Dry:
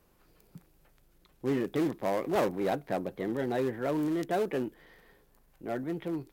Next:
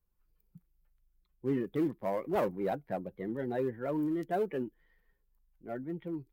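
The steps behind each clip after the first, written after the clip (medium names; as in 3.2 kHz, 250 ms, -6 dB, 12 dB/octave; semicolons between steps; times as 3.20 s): expander on every frequency bin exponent 1.5; peaking EQ 6.2 kHz -11 dB 2.2 oct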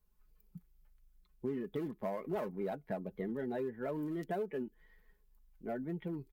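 comb 4.7 ms, depth 45%; compression 5:1, threshold -39 dBFS, peak gain reduction 13.5 dB; trim +3.5 dB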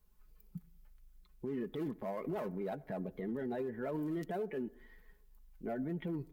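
peak limiter -36 dBFS, peak gain reduction 10 dB; on a send at -22.5 dB: reverberation RT60 0.70 s, pre-delay 62 ms; on the sum: trim +5 dB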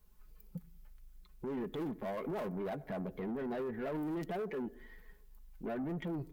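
saturation -38.5 dBFS, distortion -12 dB; trim +4.5 dB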